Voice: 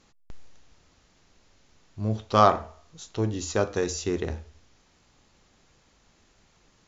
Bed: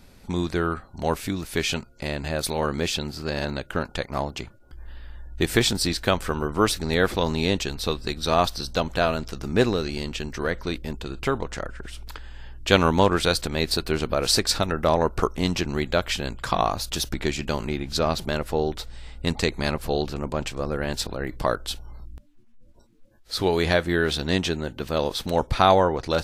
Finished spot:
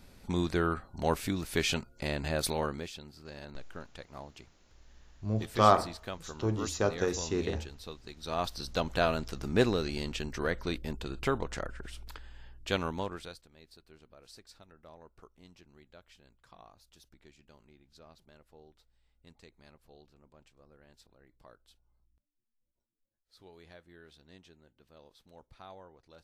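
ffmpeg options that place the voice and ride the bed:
ffmpeg -i stem1.wav -i stem2.wav -filter_complex "[0:a]adelay=3250,volume=-4dB[link_01];[1:a]volume=8.5dB,afade=type=out:start_time=2.49:duration=0.4:silence=0.199526,afade=type=in:start_time=8.15:duration=0.79:silence=0.223872,afade=type=out:start_time=11.64:duration=1.79:silence=0.0421697[link_02];[link_01][link_02]amix=inputs=2:normalize=0" out.wav

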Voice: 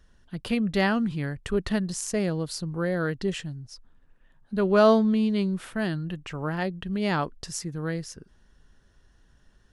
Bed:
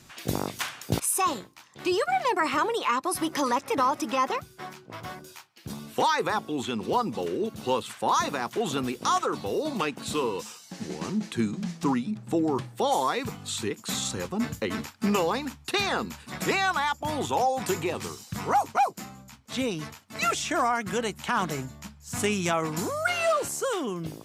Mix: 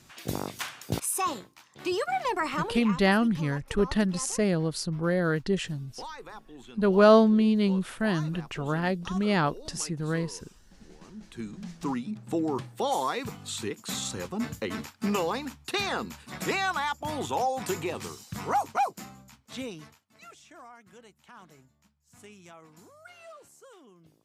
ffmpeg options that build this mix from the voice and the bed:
ffmpeg -i stem1.wav -i stem2.wav -filter_complex "[0:a]adelay=2250,volume=1dB[link_01];[1:a]volume=11dB,afade=type=out:start_time=2.4:duration=0.67:silence=0.199526,afade=type=in:start_time=11.13:duration=1.11:silence=0.188365,afade=type=out:start_time=19.08:duration=1.11:silence=0.0891251[link_02];[link_01][link_02]amix=inputs=2:normalize=0" out.wav

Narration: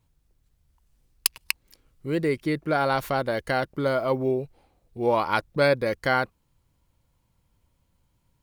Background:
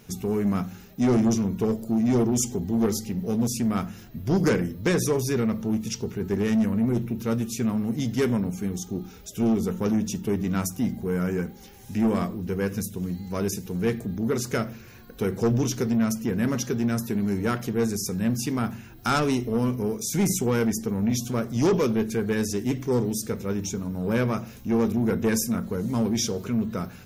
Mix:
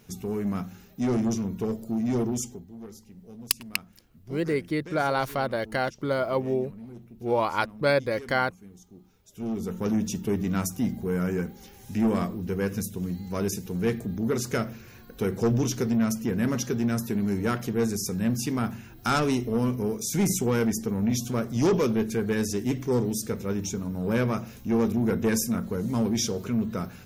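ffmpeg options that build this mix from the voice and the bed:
ffmpeg -i stem1.wav -i stem2.wav -filter_complex "[0:a]adelay=2250,volume=-2dB[link_01];[1:a]volume=14dB,afade=type=out:start_time=2.3:duration=0.36:silence=0.177828,afade=type=in:start_time=9.23:duration=0.78:silence=0.11885[link_02];[link_01][link_02]amix=inputs=2:normalize=0" out.wav

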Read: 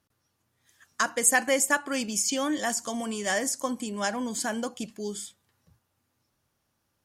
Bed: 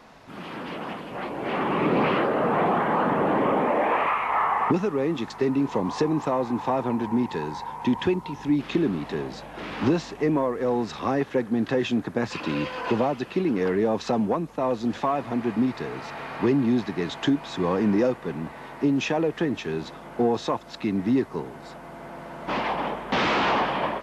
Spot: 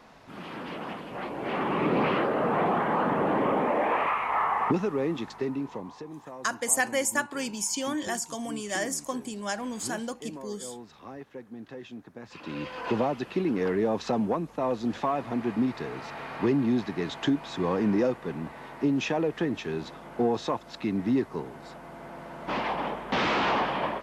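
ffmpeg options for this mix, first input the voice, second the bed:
ffmpeg -i stem1.wav -i stem2.wav -filter_complex "[0:a]adelay=5450,volume=-3dB[link_01];[1:a]volume=12dB,afade=type=out:start_time=5.04:duration=0.95:silence=0.177828,afade=type=in:start_time=12.24:duration=0.74:silence=0.177828[link_02];[link_01][link_02]amix=inputs=2:normalize=0" out.wav

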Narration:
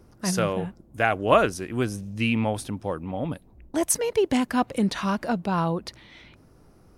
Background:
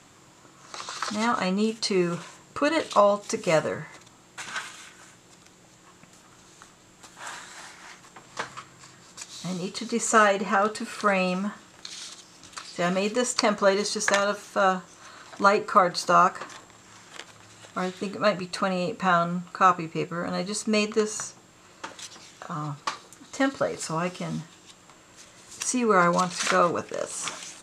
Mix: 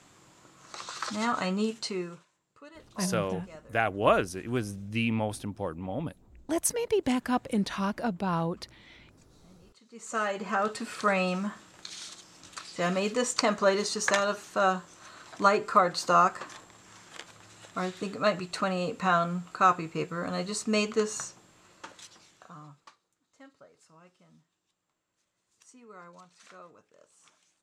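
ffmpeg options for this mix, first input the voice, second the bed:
ffmpeg -i stem1.wav -i stem2.wav -filter_complex "[0:a]adelay=2750,volume=-4.5dB[link_01];[1:a]volume=19.5dB,afade=type=out:start_time=1.64:duration=0.62:silence=0.0749894,afade=type=in:start_time=9.9:duration=0.92:silence=0.0668344,afade=type=out:start_time=21.13:duration=1.83:silence=0.0501187[link_02];[link_01][link_02]amix=inputs=2:normalize=0" out.wav

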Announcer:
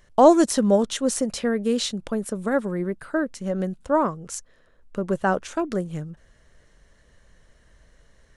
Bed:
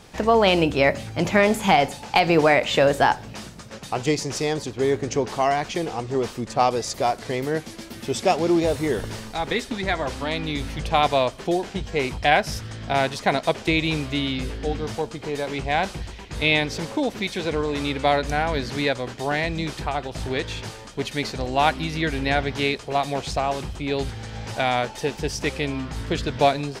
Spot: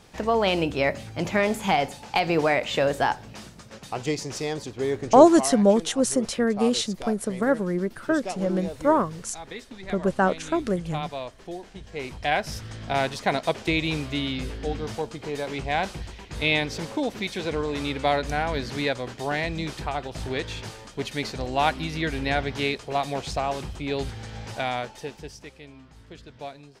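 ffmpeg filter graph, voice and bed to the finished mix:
ffmpeg -i stem1.wav -i stem2.wav -filter_complex "[0:a]adelay=4950,volume=0.5dB[link_01];[1:a]volume=5.5dB,afade=type=out:start_time=5.23:duration=0.35:silence=0.375837,afade=type=in:start_time=11.77:duration=0.98:silence=0.298538,afade=type=out:start_time=24.29:duration=1.21:silence=0.149624[link_02];[link_01][link_02]amix=inputs=2:normalize=0" out.wav

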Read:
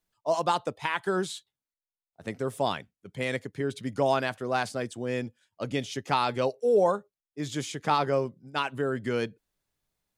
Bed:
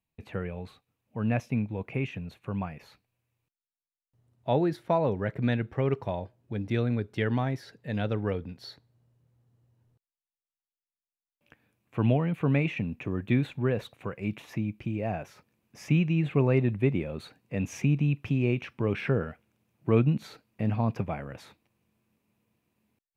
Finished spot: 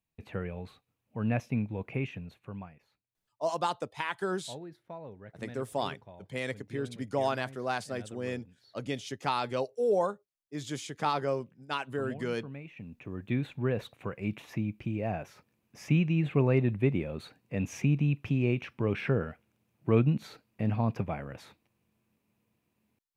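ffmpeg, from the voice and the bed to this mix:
ffmpeg -i stem1.wav -i stem2.wav -filter_complex "[0:a]adelay=3150,volume=-4.5dB[link_01];[1:a]volume=15dB,afade=type=out:start_time=1.97:duration=0.88:silence=0.149624,afade=type=in:start_time=12.68:duration=1.18:silence=0.141254[link_02];[link_01][link_02]amix=inputs=2:normalize=0" out.wav

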